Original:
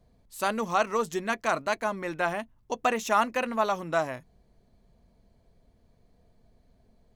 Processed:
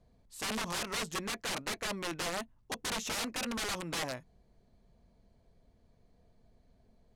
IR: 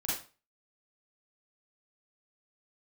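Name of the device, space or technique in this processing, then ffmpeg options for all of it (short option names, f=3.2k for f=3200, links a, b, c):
overflowing digital effects unit: -af "aeval=exprs='(mod(20*val(0)+1,2)-1)/20':c=same,lowpass=10k,volume=-3dB"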